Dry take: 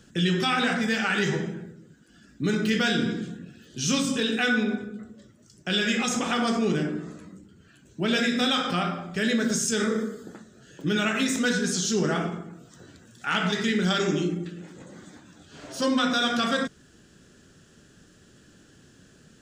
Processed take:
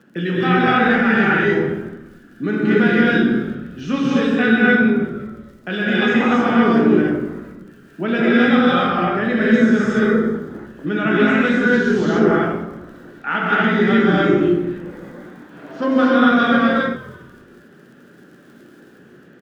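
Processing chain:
Chebyshev band-pass filter 220–1,700 Hz, order 2
surface crackle 28 per second −47 dBFS
echo with shifted repeats 169 ms, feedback 46%, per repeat −50 Hz, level −18.5 dB
reverb whose tail is shaped and stops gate 310 ms rising, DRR −5 dB
level +5 dB

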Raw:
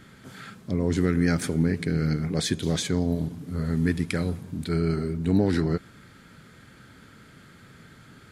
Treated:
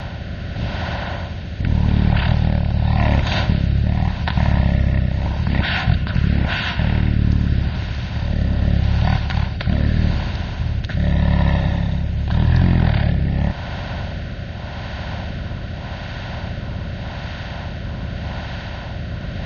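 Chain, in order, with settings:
compressor on every frequency bin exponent 0.4
wrong playback speed 78 rpm record played at 33 rpm
rotating-speaker cabinet horn 0.85 Hz
level +4.5 dB

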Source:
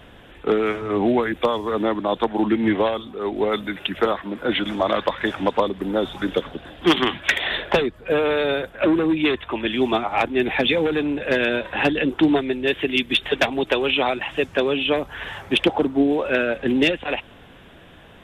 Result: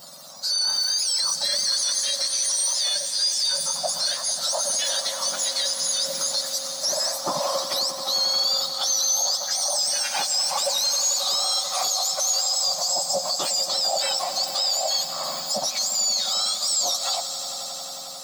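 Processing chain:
frequency axis turned over on the octave scale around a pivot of 1,400 Hz
high shelf with overshoot 3,500 Hz +9.5 dB, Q 3
brickwall limiter −18 dBFS, peak gain reduction 20 dB
echo that builds up and dies away 89 ms, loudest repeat 5, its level −15 dB
level +1.5 dB

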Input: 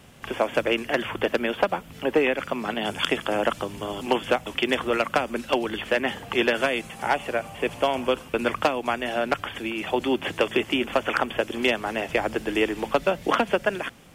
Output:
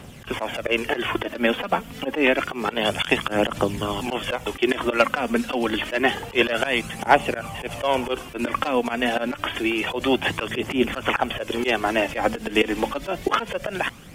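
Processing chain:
volume swells 102 ms
phase shifter 0.28 Hz, delay 4.5 ms, feedback 43%
level +5.5 dB

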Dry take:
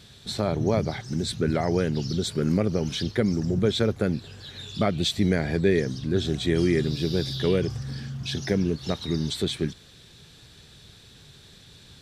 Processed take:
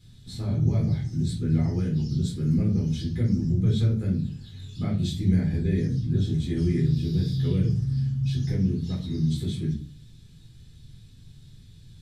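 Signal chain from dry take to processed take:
drawn EQ curve 140 Hz 0 dB, 590 Hz −21 dB, 10,000 Hz −9 dB
rectangular room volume 240 cubic metres, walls furnished, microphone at 4 metres
level −4 dB

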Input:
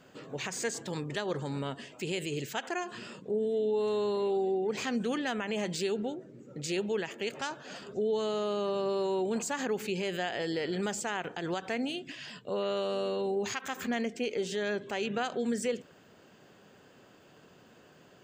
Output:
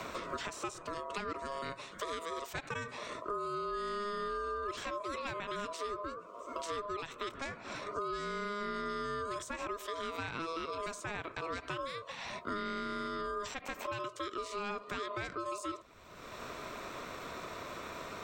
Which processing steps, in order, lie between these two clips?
ring modulation 820 Hz
multiband upward and downward compressor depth 100%
level −4.5 dB

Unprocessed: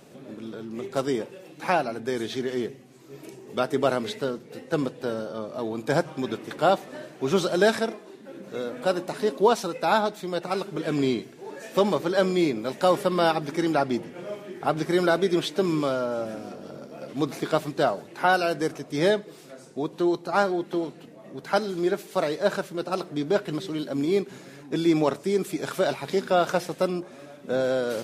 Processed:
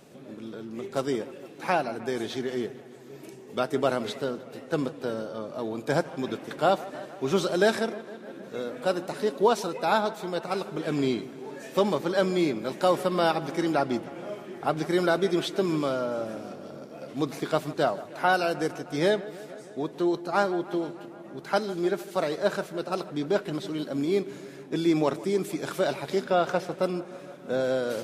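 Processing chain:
0:26.23–0:26.82: high-shelf EQ 8,200 Hz → 5,000 Hz −10.5 dB
delay with a low-pass on its return 154 ms, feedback 74%, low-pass 2,800 Hz, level −18 dB
level −2 dB

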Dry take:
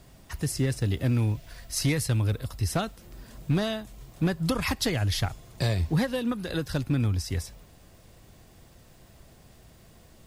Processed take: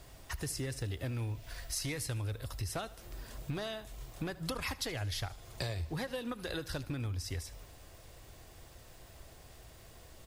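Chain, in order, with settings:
parametric band 190 Hz −10.5 dB 1.1 octaves
downward compressor 4 to 1, threshold −37 dBFS, peak gain reduction 11 dB
on a send: repeating echo 76 ms, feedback 55%, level −19 dB
on the sum: level +1 dB

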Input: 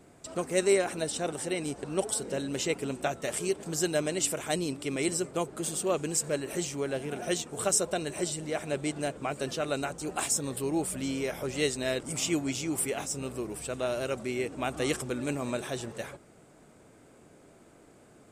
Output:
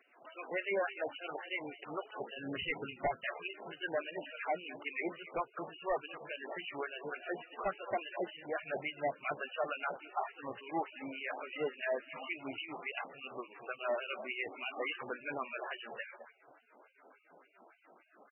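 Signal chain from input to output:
far-end echo of a speakerphone 210 ms, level −16 dB
auto-filter band-pass sine 3.5 Hz 750–3,700 Hz
0:08.64–0:09.57: low-shelf EQ 170 Hz +10.5 dB
hard clipping −34 dBFS, distortion −11 dB
0:02.37–0:03.27: bass and treble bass +13 dB, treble +4 dB
level +5.5 dB
MP3 8 kbit/s 24,000 Hz

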